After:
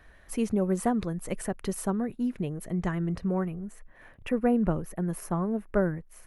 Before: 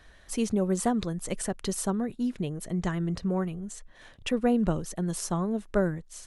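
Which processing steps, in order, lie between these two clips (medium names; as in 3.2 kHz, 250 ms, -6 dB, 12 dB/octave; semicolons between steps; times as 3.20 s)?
high-order bell 5.2 kHz -8.5 dB, from 3.47 s -16 dB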